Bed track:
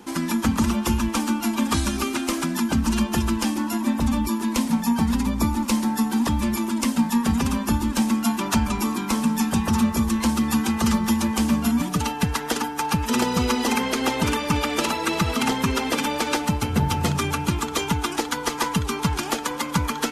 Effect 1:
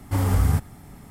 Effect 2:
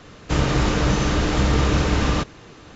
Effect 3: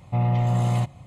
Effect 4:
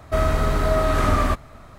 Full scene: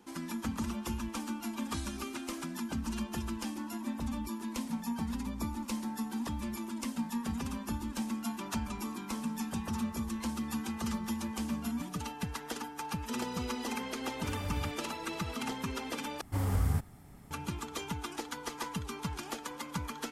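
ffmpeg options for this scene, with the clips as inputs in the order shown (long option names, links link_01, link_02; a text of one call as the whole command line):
ffmpeg -i bed.wav -i cue0.wav -filter_complex "[1:a]asplit=2[link_01][link_02];[0:a]volume=-14.5dB,asplit=2[link_03][link_04];[link_03]atrim=end=16.214[link_05];[link_02]atrim=end=1.1,asetpts=PTS-STARTPTS,volume=-9.5dB[link_06];[link_04]atrim=start=17.306[link_07];[link_01]atrim=end=1.1,asetpts=PTS-STARTPTS,volume=-18dB,afade=type=in:duration=0.004:curve=hsin,afade=type=out:start_time=1.096:duration=0.004:curve=hsin,adelay=622692S[link_08];[link_05][link_06]acrossfade=duration=0.004:curve1=hsin:curve2=hsin[link_09];[link_09][link_07]acrossfade=duration=0.004:curve1=hsin:curve2=hsin[link_10];[link_10][link_08]amix=inputs=2:normalize=0" out.wav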